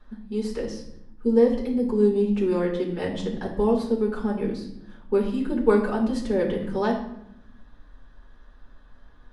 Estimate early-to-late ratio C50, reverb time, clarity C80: 7.0 dB, 0.80 s, 10.5 dB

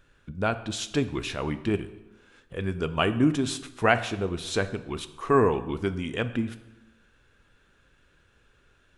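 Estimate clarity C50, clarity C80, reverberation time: 14.0 dB, 16.0 dB, 1.0 s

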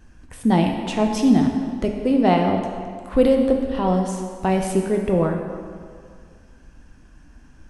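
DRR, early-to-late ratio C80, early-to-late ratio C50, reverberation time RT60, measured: 2.0 dB, 5.5 dB, 4.5 dB, 2.1 s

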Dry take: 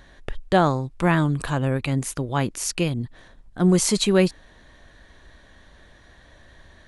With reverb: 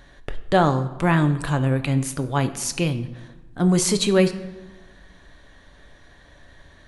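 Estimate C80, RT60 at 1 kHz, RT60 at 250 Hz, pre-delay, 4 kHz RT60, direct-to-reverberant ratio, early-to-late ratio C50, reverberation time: 15.0 dB, 1.2 s, 1.5 s, 7 ms, 0.75 s, 8.5 dB, 13.0 dB, 1.2 s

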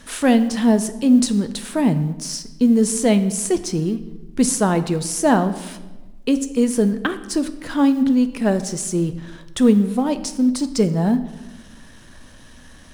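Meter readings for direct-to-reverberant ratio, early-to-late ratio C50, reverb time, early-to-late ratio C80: 10.5 dB, 13.0 dB, 1.2 s, 15.0 dB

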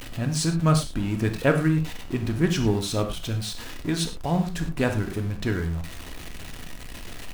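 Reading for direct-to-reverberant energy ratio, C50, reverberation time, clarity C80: 4.5 dB, 9.5 dB, not exponential, 13.0 dB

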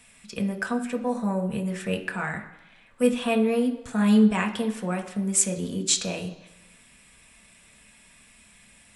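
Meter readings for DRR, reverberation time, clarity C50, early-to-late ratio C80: 3.5 dB, 0.95 s, 11.0 dB, 13.5 dB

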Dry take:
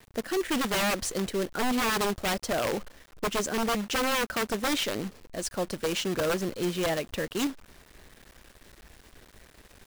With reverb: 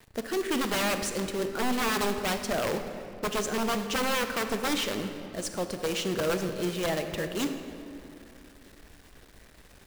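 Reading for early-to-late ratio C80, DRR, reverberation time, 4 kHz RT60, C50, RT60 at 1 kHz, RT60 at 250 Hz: 8.5 dB, 7.0 dB, 2.8 s, 1.7 s, 7.5 dB, 2.6 s, 3.3 s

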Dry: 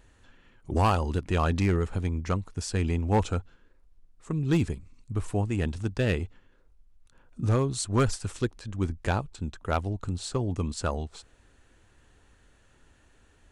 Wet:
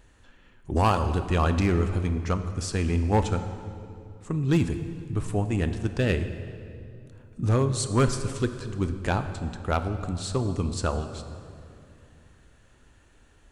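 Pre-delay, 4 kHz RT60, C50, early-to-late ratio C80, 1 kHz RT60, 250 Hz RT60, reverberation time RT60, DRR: 8 ms, 1.8 s, 10.0 dB, 10.5 dB, 2.4 s, 3.3 s, 2.6 s, 8.5 dB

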